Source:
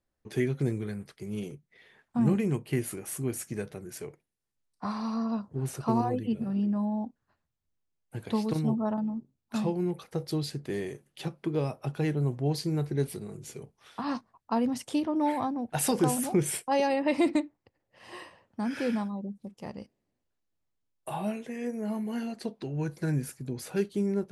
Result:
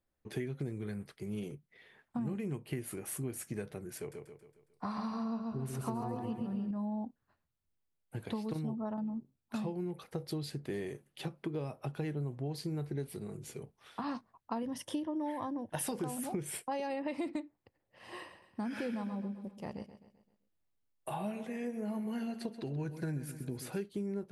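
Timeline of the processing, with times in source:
0:03.98–0:06.71: repeating echo 137 ms, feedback 47%, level −5 dB
0:14.62–0:15.84: EQ curve with evenly spaced ripples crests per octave 1.2, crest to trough 9 dB
0:18.16–0:23.78: repeating echo 130 ms, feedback 46%, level −13 dB
whole clip: parametric band 6,200 Hz −4.5 dB 0.8 octaves; downward compressor, threshold −32 dBFS; level −2 dB

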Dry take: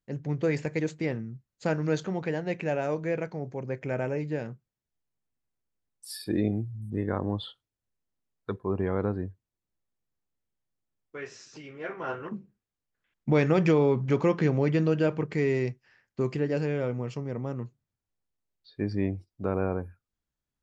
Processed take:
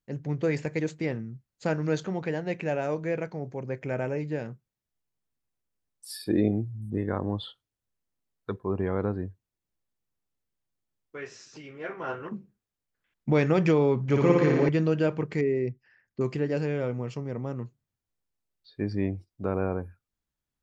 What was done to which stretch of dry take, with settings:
0:06.27–0:06.98: parametric band 450 Hz +4 dB 2.4 octaves
0:14.07–0:14.69: flutter between parallel walls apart 9.9 metres, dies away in 1.4 s
0:15.41–0:16.21: spectral envelope exaggerated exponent 1.5

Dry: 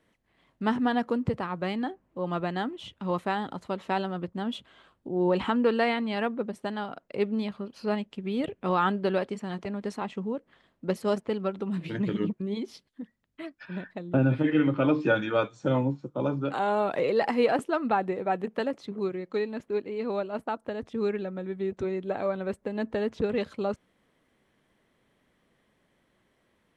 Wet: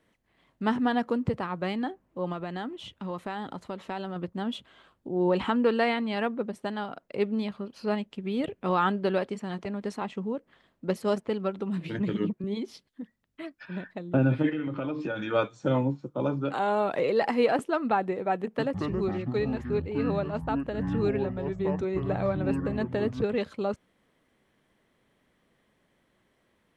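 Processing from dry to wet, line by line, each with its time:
0:02.32–0:04.16: downward compressor 2.5 to 1, threshold −32 dBFS
0:11.99–0:12.44: multiband upward and downward expander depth 40%
0:14.49–0:15.30: downward compressor, threshold −28 dBFS
0:18.43–0:23.24: delay with pitch and tempo change per echo 154 ms, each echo −7 semitones, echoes 3

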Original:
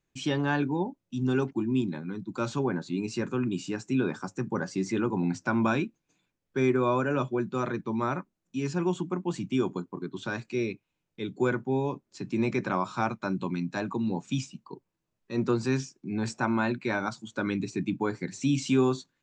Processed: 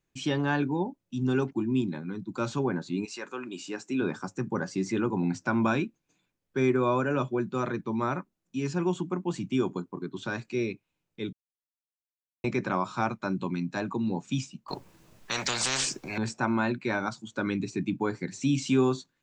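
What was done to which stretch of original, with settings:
0:03.04–0:04.01: high-pass filter 810 Hz → 230 Hz
0:11.33–0:12.44: silence
0:14.68–0:16.18: every bin compressed towards the loudest bin 10 to 1

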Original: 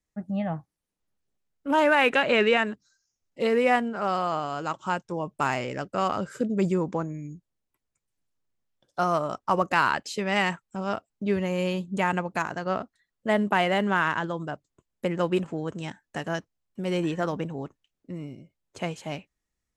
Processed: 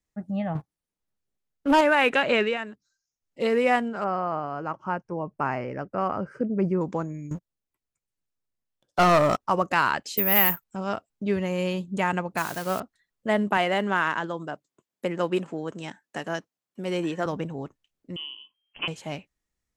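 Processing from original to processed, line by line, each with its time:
0:00.55–0:01.81: leveller curve on the samples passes 2
0:02.34–0:03.43: duck −8.5 dB, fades 0.23 s
0:04.04–0:06.81: moving average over 12 samples
0:07.31–0:09.40: leveller curve on the samples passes 3
0:10.17–0:10.64: bad sample-rate conversion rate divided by 3×, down none, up zero stuff
0:12.37–0:12.80: spike at every zero crossing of −26 dBFS
0:13.57–0:17.26: high-pass filter 190 Hz
0:18.16–0:18.88: voice inversion scrambler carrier 3,200 Hz

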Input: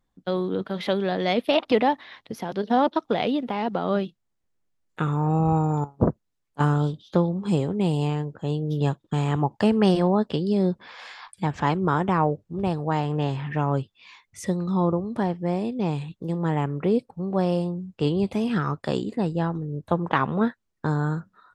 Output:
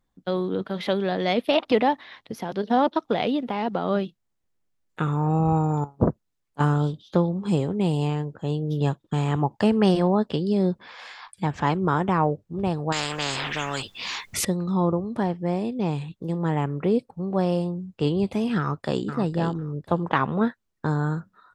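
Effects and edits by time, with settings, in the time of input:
0:12.92–0:14.45: every bin compressed towards the loudest bin 4 to 1
0:18.58–0:19.03: delay throw 500 ms, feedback 15%, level −7.5 dB

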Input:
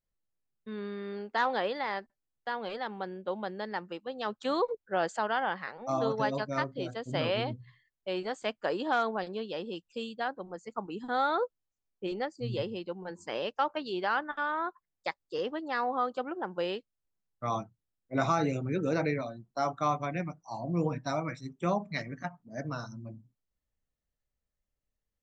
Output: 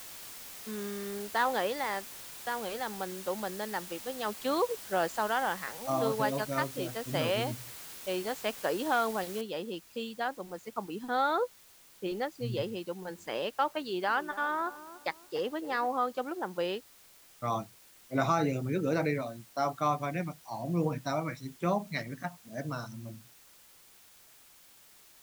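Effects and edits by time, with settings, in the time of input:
0:09.41: noise floor change −46 dB −58 dB
0:13.80–0:15.86: feedback echo with a low-pass in the loop 285 ms, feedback 43%, low-pass 990 Hz, level −13 dB

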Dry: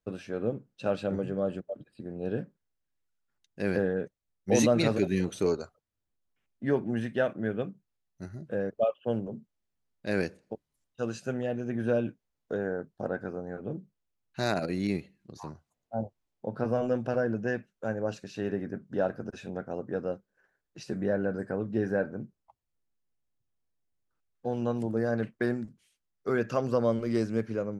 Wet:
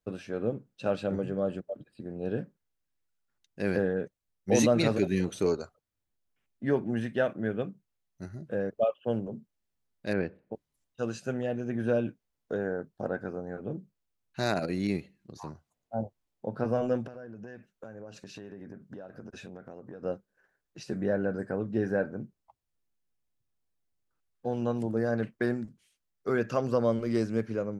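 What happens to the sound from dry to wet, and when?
0:10.13–0:10.54: high-frequency loss of the air 440 metres
0:17.07–0:20.03: downward compressor 20 to 1, threshold −39 dBFS

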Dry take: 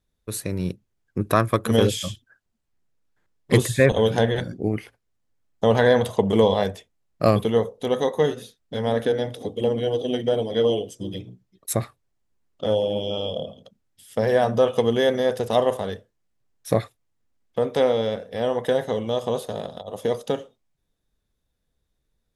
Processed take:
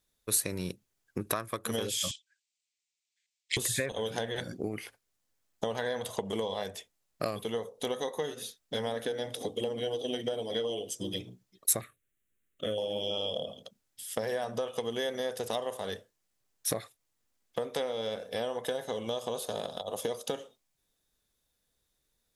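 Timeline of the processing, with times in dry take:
0:02.11–0:03.57: elliptic band-pass filter 2,200–8,000 Hz
0:11.81–0:12.78: phaser with its sweep stopped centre 2,100 Hz, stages 4
0:17.91–0:20.34: notch filter 1,900 Hz
whole clip: low-shelf EQ 250 Hz −9.5 dB; downward compressor 10 to 1, threshold −30 dBFS; high-shelf EQ 3,800 Hz +9 dB

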